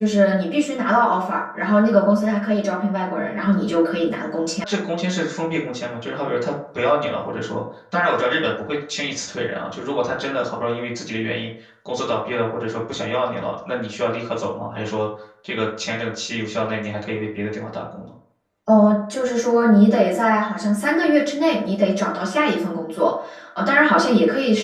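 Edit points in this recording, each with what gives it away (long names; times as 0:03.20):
0:04.64: cut off before it has died away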